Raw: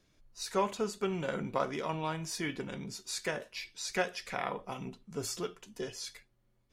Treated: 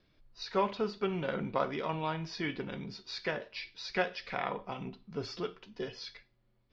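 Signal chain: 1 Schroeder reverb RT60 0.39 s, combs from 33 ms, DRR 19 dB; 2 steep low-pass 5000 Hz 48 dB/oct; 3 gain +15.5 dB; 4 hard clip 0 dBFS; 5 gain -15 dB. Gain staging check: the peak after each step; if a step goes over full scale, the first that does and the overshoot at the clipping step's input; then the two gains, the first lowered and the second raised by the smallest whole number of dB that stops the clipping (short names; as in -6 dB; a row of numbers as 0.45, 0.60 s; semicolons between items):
-17.0, -17.5, -2.0, -2.0, -17.0 dBFS; no overload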